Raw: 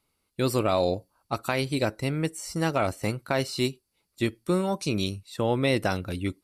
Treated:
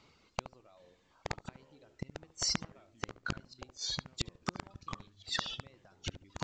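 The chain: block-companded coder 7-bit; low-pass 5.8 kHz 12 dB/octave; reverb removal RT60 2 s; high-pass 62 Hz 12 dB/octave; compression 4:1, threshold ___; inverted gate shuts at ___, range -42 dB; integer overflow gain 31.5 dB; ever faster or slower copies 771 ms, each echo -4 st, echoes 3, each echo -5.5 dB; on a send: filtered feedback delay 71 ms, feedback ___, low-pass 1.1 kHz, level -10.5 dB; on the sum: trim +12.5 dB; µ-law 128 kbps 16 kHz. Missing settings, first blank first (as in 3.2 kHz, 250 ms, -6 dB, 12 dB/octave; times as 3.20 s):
-29 dBFS, -31 dBFS, 26%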